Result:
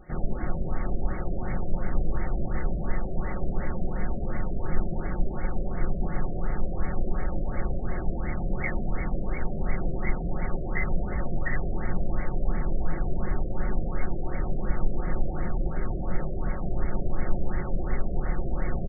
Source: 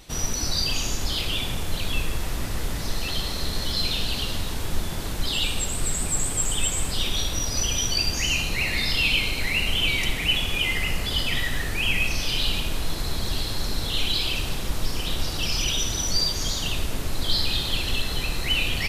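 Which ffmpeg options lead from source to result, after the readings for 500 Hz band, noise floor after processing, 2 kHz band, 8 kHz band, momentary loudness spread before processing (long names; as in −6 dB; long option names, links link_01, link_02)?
+1.0 dB, −31 dBFS, −11.5 dB, below −40 dB, 7 LU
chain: -af "asuperstop=centerf=1000:order=20:qfactor=6.8,aecho=1:1:5.5:0.5,afftfilt=real='re*lt(b*sr/1024,700*pow(2300/700,0.5+0.5*sin(2*PI*2.8*pts/sr)))':imag='im*lt(b*sr/1024,700*pow(2300/700,0.5+0.5*sin(2*PI*2.8*pts/sr)))':win_size=1024:overlap=0.75"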